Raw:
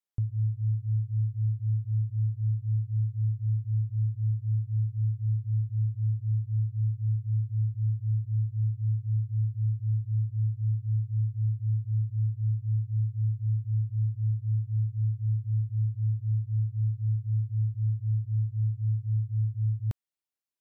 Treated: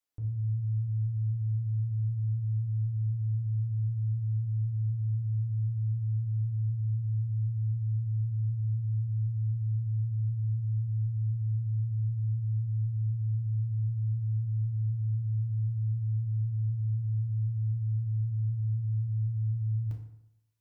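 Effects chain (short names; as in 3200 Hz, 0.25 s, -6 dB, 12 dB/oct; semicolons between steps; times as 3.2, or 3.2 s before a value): limiter -33.5 dBFS, peak gain reduction 12 dB; reverb RT60 0.80 s, pre-delay 3 ms, DRR -1 dB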